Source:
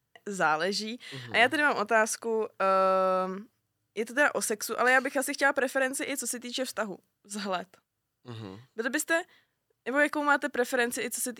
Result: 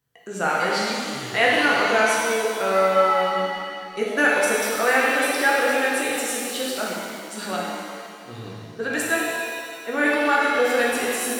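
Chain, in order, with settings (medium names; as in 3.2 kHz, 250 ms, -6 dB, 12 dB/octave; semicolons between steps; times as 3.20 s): 3.28–4.63 s: transient shaper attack +4 dB, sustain -9 dB; pitch-shifted reverb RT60 2.1 s, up +7 st, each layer -8 dB, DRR -4.5 dB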